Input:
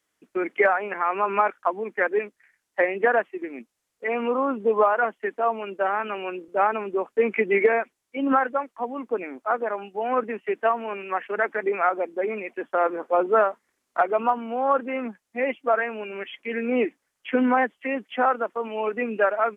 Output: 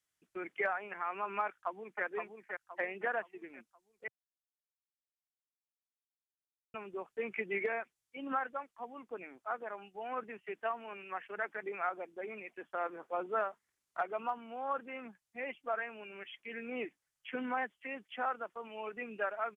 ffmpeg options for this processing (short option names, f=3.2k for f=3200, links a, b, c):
-filter_complex "[0:a]asplit=2[a][b];[b]afade=t=in:st=1.45:d=0.01,afade=t=out:st=2.04:d=0.01,aecho=0:1:520|1040|1560|2080|2600:0.562341|0.224937|0.0899746|0.0359898|0.0143959[c];[a][c]amix=inputs=2:normalize=0,asplit=3[d][e][f];[d]atrim=end=4.08,asetpts=PTS-STARTPTS,afade=t=out:st=4.076:d=0.004:c=hsin[g];[e]atrim=start=4.08:end=6.74,asetpts=PTS-STARTPTS,volume=0[h];[f]atrim=start=6.74,asetpts=PTS-STARTPTS,afade=t=in:d=0.004:c=hsin[i];[g][h][i]concat=n=3:v=0:a=1,equalizer=f=125:t=o:w=1:g=5,equalizer=f=250:t=o:w=1:g=-10,equalizer=f=500:t=o:w=1:g=-7,equalizer=f=1k:t=o:w=1:g=-4,equalizer=f=2k:t=o:w=1:g=-3,volume=-8dB"